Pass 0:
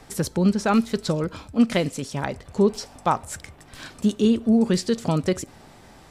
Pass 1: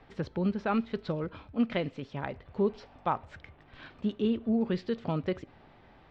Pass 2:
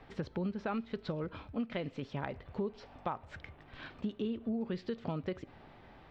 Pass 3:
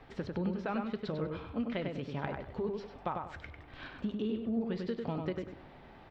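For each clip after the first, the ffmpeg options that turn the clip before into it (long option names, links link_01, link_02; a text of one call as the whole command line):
ffmpeg -i in.wav -af "lowpass=frequency=3400:width=0.5412,lowpass=frequency=3400:width=1.3066,equalizer=frequency=200:width_type=o:width=0.77:gain=-2,volume=-8dB" out.wav
ffmpeg -i in.wav -af "acompressor=threshold=-35dB:ratio=4,volume=1dB" out.wav
ffmpeg -i in.wav -filter_complex "[0:a]flanger=delay=2.4:depth=3.1:regen=-86:speed=0.79:shape=sinusoidal,asplit=2[link_01][link_02];[link_02]adelay=98,lowpass=frequency=2700:poles=1,volume=-3.5dB,asplit=2[link_03][link_04];[link_04]adelay=98,lowpass=frequency=2700:poles=1,volume=0.3,asplit=2[link_05][link_06];[link_06]adelay=98,lowpass=frequency=2700:poles=1,volume=0.3,asplit=2[link_07][link_08];[link_08]adelay=98,lowpass=frequency=2700:poles=1,volume=0.3[link_09];[link_03][link_05][link_07][link_09]amix=inputs=4:normalize=0[link_10];[link_01][link_10]amix=inputs=2:normalize=0,volume=5dB" out.wav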